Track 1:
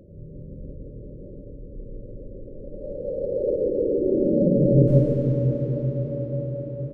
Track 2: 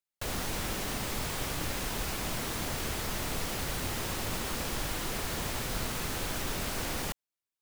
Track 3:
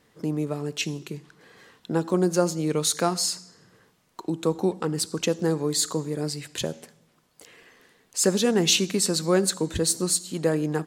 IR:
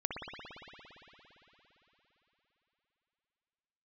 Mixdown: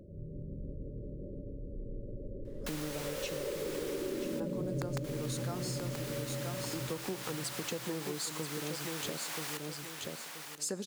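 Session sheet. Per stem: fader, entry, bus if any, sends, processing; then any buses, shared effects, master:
-3.5 dB, 0.00 s, no send, echo send -12 dB, notch 500 Hz, Q 12; wrapped overs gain 6.5 dB
0.0 dB, 2.45 s, muted 4.4–5.04, no send, echo send -9 dB, HPF 910 Hz 12 dB/oct
-5.5 dB, 2.45 s, no send, echo send -7.5 dB, dry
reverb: off
echo: feedback echo 0.98 s, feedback 20%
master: compressor 5:1, threshold -35 dBFS, peak gain reduction 18 dB

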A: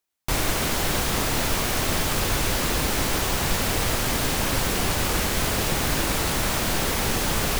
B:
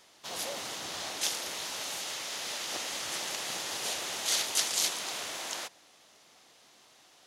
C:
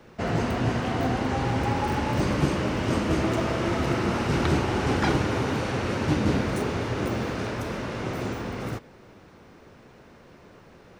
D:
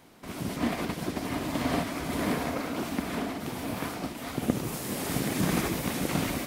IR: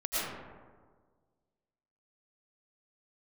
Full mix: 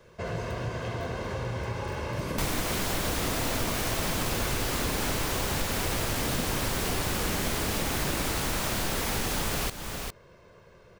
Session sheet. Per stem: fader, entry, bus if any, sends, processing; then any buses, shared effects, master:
+2.5 dB, 2.10 s, no send, echo send -13 dB, dry
-11.5 dB, 0.00 s, no send, no echo send, slew limiter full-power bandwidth 40 Hz
-7.0 dB, 0.00 s, send -15.5 dB, no echo send, comb 1.9 ms, depth 66%
-0.5 dB, 1.90 s, no send, no echo send, dry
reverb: on, RT60 1.6 s, pre-delay 70 ms
echo: echo 0.406 s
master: compressor 2.5:1, threshold -30 dBFS, peak gain reduction 10.5 dB

